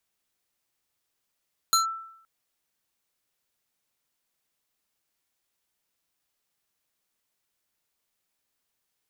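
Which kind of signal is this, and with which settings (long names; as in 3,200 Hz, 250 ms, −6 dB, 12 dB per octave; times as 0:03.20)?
two-operator FM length 0.52 s, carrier 1,330 Hz, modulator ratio 4.09, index 1.5, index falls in 0.13 s linear, decay 0.72 s, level −15.5 dB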